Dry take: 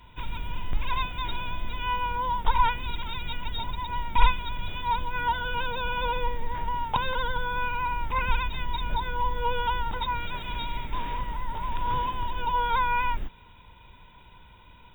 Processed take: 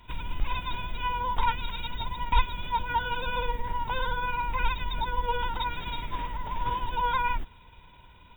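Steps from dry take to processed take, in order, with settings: granular stretch 0.56×, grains 106 ms

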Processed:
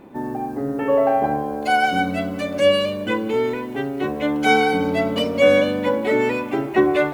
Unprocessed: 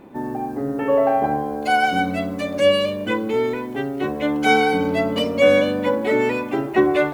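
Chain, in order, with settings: thinning echo 185 ms, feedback 70%, level -22 dB

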